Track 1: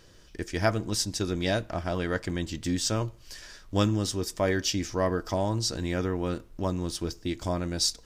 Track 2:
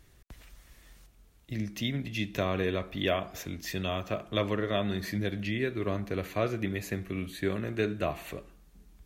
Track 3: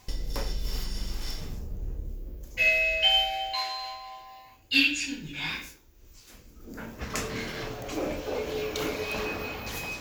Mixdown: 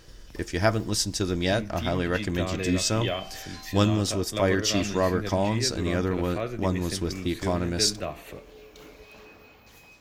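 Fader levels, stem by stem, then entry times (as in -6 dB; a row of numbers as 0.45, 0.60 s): +2.5, -2.0, -17.0 dB; 0.00, 0.00, 0.00 s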